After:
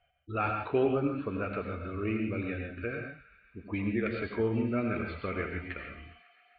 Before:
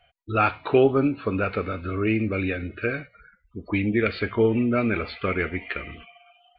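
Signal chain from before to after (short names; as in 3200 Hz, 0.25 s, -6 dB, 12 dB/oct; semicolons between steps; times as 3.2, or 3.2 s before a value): air absorption 210 m; thin delay 0.137 s, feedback 82%, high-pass 1700 Hz, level -19 dB; on a send at -3 dB: reverb, pre-delay 80 ms; on the sum: gain -9 dB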